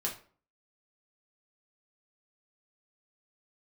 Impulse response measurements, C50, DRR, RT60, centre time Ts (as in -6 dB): 9.5 dB, -3.0 dB, 0.45 s, 19 ms